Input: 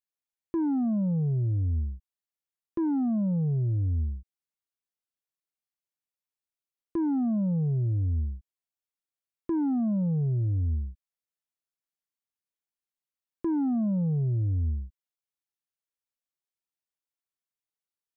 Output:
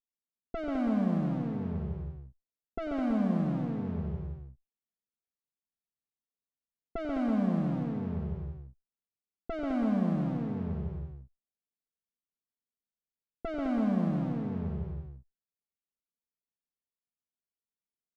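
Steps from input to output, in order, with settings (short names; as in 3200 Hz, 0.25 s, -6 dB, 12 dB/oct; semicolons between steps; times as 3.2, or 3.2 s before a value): minimum comb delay 4.5 ms; one-sided clip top -32.5 dBFS; low-pass opened by the level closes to 390 Hz, open at -29 dBFS; tapped delay 93/136/208/328 ms -12/-4.5/-5.5/-8 dB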